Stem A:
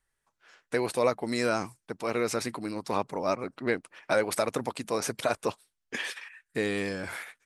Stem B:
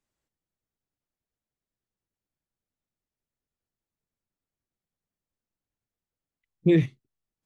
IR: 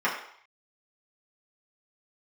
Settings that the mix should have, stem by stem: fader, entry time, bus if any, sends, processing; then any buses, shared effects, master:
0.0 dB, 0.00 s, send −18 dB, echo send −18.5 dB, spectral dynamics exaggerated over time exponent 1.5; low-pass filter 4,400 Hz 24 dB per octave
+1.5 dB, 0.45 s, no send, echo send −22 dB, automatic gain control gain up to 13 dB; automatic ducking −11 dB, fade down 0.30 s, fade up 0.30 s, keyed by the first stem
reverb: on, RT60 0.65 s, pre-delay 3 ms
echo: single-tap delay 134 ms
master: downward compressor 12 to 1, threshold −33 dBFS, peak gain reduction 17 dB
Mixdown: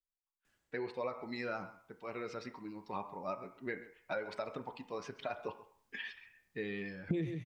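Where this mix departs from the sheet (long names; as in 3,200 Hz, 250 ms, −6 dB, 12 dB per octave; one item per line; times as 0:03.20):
stem A 0.0 dB → −9.0 dB
stem B +1.5 dB → +9.0 dB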